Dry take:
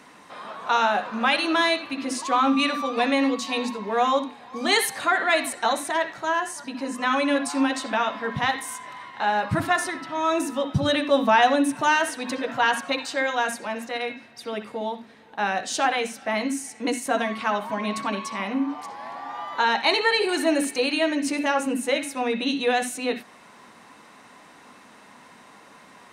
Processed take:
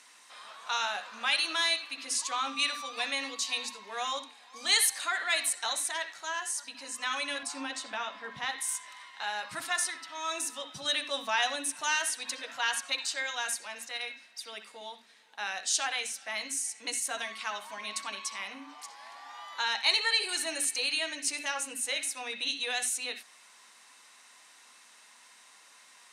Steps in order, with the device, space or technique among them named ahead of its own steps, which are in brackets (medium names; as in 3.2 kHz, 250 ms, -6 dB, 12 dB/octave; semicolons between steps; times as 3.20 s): piezo pickup straight into a mixer (low-pass 9 kHz 12 dB/octave; differentiator); 7.43–8.60 s: tilt EQ -2.5 dB/octave; trim +4.5 dB